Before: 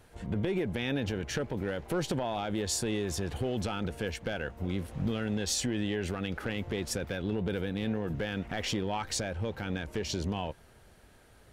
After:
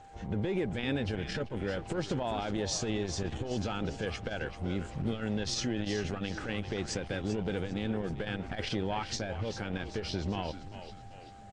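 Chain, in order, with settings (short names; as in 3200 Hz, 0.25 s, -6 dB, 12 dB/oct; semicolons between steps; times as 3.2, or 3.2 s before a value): nonlinear frequency compression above 3900 Hz 1.5:1; whine 790 Hz -51 dBFS; frequency-shifting echo 0.39 s, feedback 48%, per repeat -98 Hz, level -11 dB; core saturation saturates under 200 Hz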